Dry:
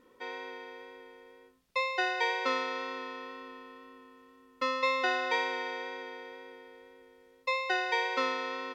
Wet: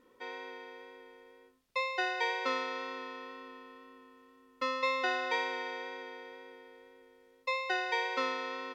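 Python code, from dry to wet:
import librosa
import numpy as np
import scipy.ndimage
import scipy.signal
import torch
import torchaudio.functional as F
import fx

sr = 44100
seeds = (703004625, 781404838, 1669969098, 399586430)

y = fx.hum_notches(x, sr, base_hz=60, count=3)
y = y * librosa.db_to_amplitude(-2.5)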